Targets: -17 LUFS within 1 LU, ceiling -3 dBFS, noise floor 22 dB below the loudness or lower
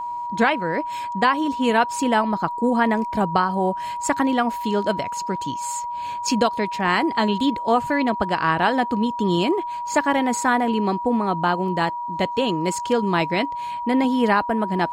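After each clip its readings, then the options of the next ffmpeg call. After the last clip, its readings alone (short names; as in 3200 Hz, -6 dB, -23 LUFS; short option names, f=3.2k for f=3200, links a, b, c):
steady tone 960 Hz; tone level -26 dBFS; loudness -21.5 LUFS; peak -6.0 dBFS; loudness target -17.0 LUFS
-> -af "bandreject=f=960:w=30"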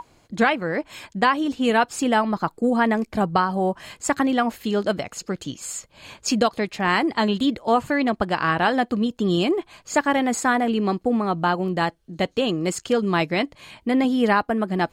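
steady tone none; loudness -22.5 LUFS; peak -6.5 dBFS; loudness target -17.0 LUFS
-> -af "volume=5.5dB,alimiter=limit=-3dB:level=0:latency=1"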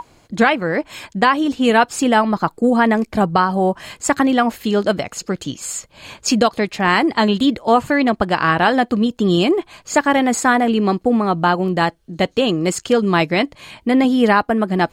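loudness -17.0 LUFS; peak -3.0 dBFS; noise floor -54 dBFS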